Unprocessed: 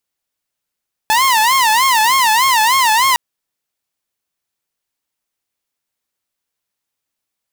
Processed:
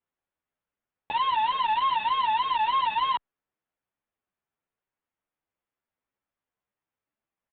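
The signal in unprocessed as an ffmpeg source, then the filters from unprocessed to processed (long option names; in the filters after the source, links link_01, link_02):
-f lavfi -i "aevalsrc='0.422*(2*mod((970.5*t-109.5/(2*PI*3.3)*sin(2*PI*3.3*t)),1)-1)':duration=2.06:sample_rate=44100"
-filter_complex "[0:a]lowpass=1800,aresample=8000,asoftclip=type=tanh:threshold=-20.5dB,aresample=44100,asplit=2[link_01][link_02];[link_02]adelay=9.8,afreqshift=2.2[link_03];[link_01][link_03]amix=inputs=2:normalize=1"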